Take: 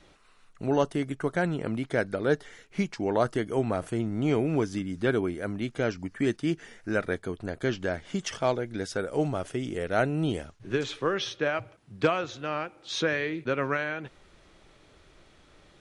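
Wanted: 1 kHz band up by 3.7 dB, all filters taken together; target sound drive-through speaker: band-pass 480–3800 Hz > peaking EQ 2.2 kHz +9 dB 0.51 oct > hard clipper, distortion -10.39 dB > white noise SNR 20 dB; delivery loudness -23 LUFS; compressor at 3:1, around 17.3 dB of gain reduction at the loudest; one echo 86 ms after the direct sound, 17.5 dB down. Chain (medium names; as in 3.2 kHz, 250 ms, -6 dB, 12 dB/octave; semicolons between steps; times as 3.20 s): peaking EQ 1 kHz +5 dB; compression 3:1, threshold -42 dBFS; band-pass 480–3800 Hz; peaking EQ 2.2 kHz +9 dB 0.51 oct; delay 86 ms -17.5 dB; hard clipper -37.5 dBFS; white noise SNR 20 dB; trim +23 dB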